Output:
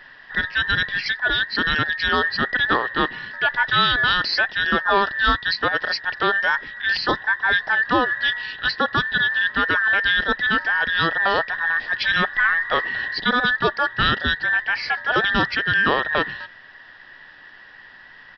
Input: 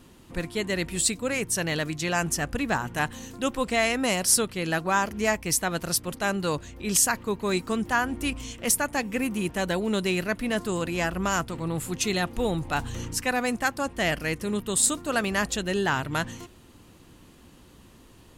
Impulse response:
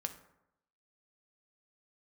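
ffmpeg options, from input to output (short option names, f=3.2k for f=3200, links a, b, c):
-filter_complex "[0:a]afftfilt=real='real(if(between(b,1,1012),(2*floor((b-1)/92)+1)*92-b,b),0)':imag='imag(if(between(b,1,1012),(2*floor((b-1)/92)+1)*92-b,b),0)*if(between(b,1,1012),-1,1)':win_size=2048:overlap=0.75,asplit=2[a][b];[b]alimiter=limit=-17.5dB:level=0:latency=1:release=28,volume=-2.5dB[c];[a][c]amix=inputs=2:normalize=0,acrusher=bits=8:mode=log:mix=0:aa=0.000001,aresample=11025,aresample=44100,volume=2.5dB"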